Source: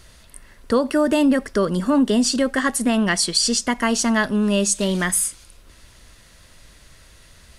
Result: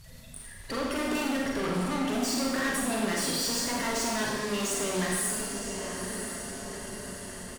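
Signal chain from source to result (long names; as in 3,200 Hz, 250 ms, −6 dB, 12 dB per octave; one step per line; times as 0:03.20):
spectral magnitudes quantised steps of 30 dB
comb filter 7.4 ms, depth 30%
in parallel at −0.5 dB: brickwall limiter −16 dBFS, peak gain reduction 8.5 dB
on the sum: feedback delay with all-pass diffusion 977 ms, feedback 57%, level −15 dB
tube saturation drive 26 dB, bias 0.5
four-comb reverb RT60 1.2 s, combs from 33 ms, DRR −2 dB
level −5.5 dB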